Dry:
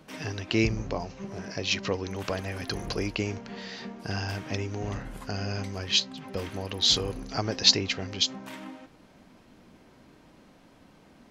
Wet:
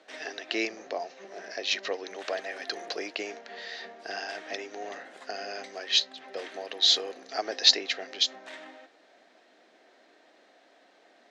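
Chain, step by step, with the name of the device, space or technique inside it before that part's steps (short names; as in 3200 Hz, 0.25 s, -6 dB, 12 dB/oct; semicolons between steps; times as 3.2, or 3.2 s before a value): phone speaker on a table (speaker cabinet 350–8000 Hz, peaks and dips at 690 Hz +8 dB, 1000 Hz -6 dB, 1800 Hz +8 dB, 3800 Hz +6 dB); gain -3 dB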